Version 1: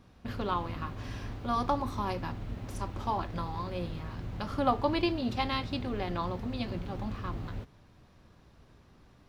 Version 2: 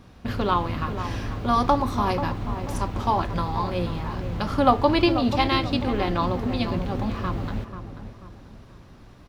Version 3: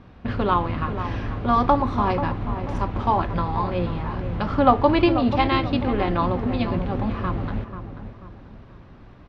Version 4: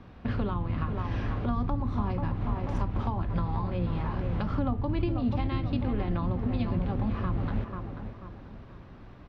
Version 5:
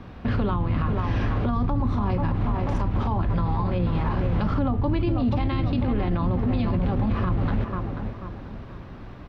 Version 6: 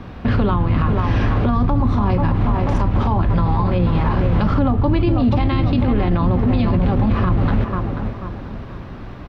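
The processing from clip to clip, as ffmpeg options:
ffmpeg -i in.wav -filter_complex "[0:a]asplit=2[link_01][link_02];[link_02]adelay=488,lowpass=frequency=1600:poles=1,volume=-9.5dB,asplit=2[link_03][link_04];[link_04]adelay=488,lowpass=frequency=1600:poles=1,volume=0.41,asplit=2[link_05][link_06];[link_06]adelay=488,lowpass=frequency=1600:poles=1,volume=0.41,asplit=2[link_07][link_08];[link_08]adelay=488,lowpass=frequency=1600:poles=1,volume=0.41[link_09];[link_01][link_03][link_05][link_07][link_09]amix=inputs=5:normalize=0,volume=9dB" out.wav
ffmpeg -i in.wav -af "lowpass=2800,volume=2dB" out.wav
ffmpeg -i in.wav -filter_complex "[0:a]acrossover=split=220[link_01][link_02];[link_02]acompressor=threshold=-32dB:ratio=10[link_03];[link_01][link_03]amix=inputs=2:normalize=0,volume=-2dB" out.wav
ffmpeg -i in.wav -af "alimiter=limit=-24dB:level=0:latency=1:release=18,volume=8dB" out.wav
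ffmpeg -i in.wav -filter_complex "[0:a]asplit=2[link_01][link_02];[link_02]adelay=290,highpass=300,lowpass=3400,asoftclip=type=hard:threshold=-24.5dB,volume=-18dB[link_03];[link_01][link_03]amix=inputs=2:normalize=0,volume=7dB" out.wav

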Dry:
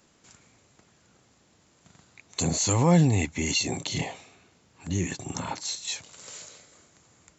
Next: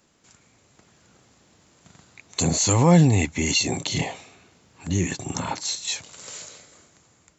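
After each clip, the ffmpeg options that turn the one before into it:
ffmpeg -i in.wav -af "dynaudnorm=framelen=150:gausssize=9:maxgain=5.5dB,volume=-1dB" out.wav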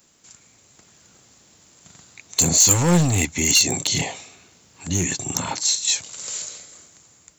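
ffmpeg -i in.wav -af "aeval=exprs='clip(val(0),-1,0.141)':channel_layout=same,crystalizer=i=2.5:c=0" out.wav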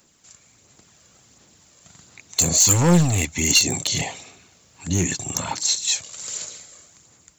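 ffmpeg -i in.wav -af "aphaser=in_gain=1:out_gain=1:delay=1.8:decay=0.33:speed=1.4:type=sinusoidal,volume=-1.5dB" out.wav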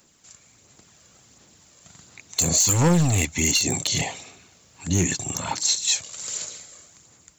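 ffmpeg -i in.wav -af "alimiter=limit=-9.5dB:level=0:latency=1:release=103" out.wav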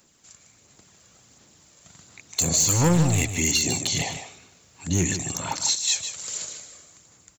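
ffmpeg -i in.wav -af "aecho=1:1:153:0.335,volume=-1.5dB" out.wav

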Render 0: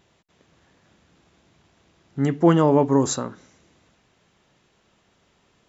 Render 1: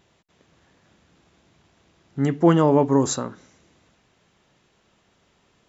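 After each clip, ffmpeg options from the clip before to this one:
ffmpeg -i in.wav -af anull out.wav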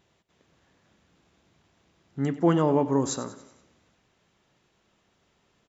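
ffmpeg -i in.wav -af "aecho=1:1:94|188|282|376|470:0.178|0.0925|0.0481|0.025|0.013,volume=-5.5dB" out.wav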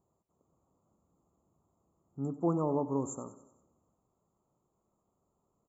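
ffmpeg -i in.wav -af "asuperstop=centerf=3000:order=20:qfactor=0.55,volume=-8.5dB" out.wav

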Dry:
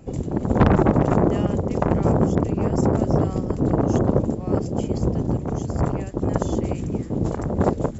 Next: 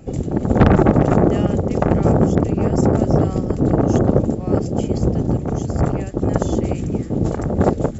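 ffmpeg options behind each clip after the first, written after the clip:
ffmpeg -i in.wav -af "bandreject=frequency=1000:width=6.8,volume=4dB" out.wav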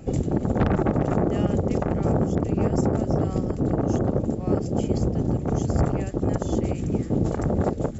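ffmpeg -i in.wav -af "alimiter=limit=-12dB:level=0:latency=1:release=402" out.wav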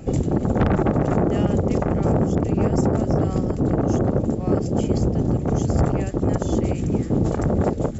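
ffmpeg -i in.wav -af "asoftclip=type=tanh:threshold=-13.5dB,volume=4dB" out.wav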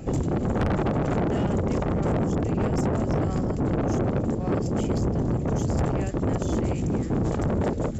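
ffmpeg -i in.wav -af "asoftclip=type=tanh:threshold=-20dB" out.wav

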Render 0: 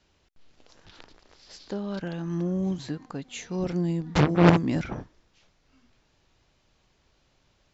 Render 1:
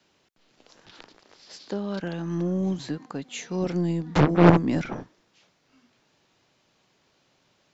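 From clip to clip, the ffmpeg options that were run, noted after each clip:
ffmpeg -i in.wav -filter_complex "[0:a]acrossover=split=120|1100|1700[link_01][link_02][link_03][link_04];[link_01]aeval=exprs='0.0841*(cos(1*acos(clip(val(0)/0.0841,-1,1)))-cos(1*PI/2))+0.0266*(cos(3*acos(clip(val(0)/0.0841,-1,1)))-cos(3*PI/2))+0.0188*(cos(6*acos(clip(val(0)/0.0841,-1,1)))-cos(6*PI/2))':channel_layout=same[link_05];[link_04]alimiter=level_in=2dB:limit=-24dB:level=0:latency=1:release=382,volume=-2dB[link_06];[link_05][link_02][link_03][link_06]amix=inputs=4:normalize=0,volume=2.5dB" out.wav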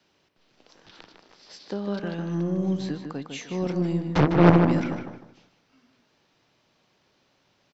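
ffmpeg -i in.wav -filter_complex "[0:a]bandreject=frequency=6900:width=6.2,asplit=2[link_01][link_02];[link_02]adelay=153,lowpass=frequency=3300:poles=1,volume=-6dB,asplit=2[link_03][link_04];[link_04]adelay=153,lowpass=frequency=3300:poles=1,volume=0.31,asplit=2[link_05][link_06];[link_06]adelay=153,lowpass=frequency=3300:poles=1,volume=0.31,asplit=2[link_07][link_08];[link_08]adelay=153,lowpass=frequency=3300:poles=1,volume=0.31[link_09];[link_03][link_05][link_07][link_09]amix=inputs=4:normalize=0[link_10];[link_01][link_10]amix=inputs=2:normalize=0,volume=-1dB" out.wav

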